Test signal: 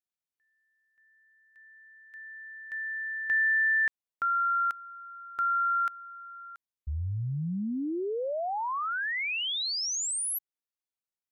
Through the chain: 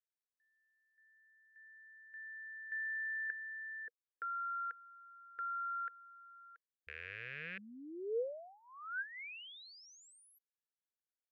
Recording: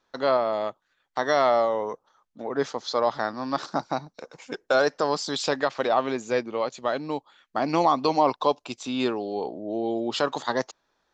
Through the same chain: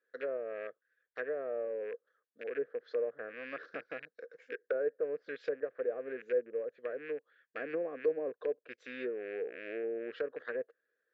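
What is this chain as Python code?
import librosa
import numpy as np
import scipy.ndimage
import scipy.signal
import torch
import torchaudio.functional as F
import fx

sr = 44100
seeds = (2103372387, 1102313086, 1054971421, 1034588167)

y = fx.rattle_buzz(x, sr, strikes_db=-40.0, level_db=-19.0)
y = fx.double_bandpass(y, sr, hz=890.0, octaves=1.8)
y = fx.env_lowpass_down(y, sr, base_hz=680.0, full_db=-30.5)
y = y * 10.0 ** (-1.5 / 20.0)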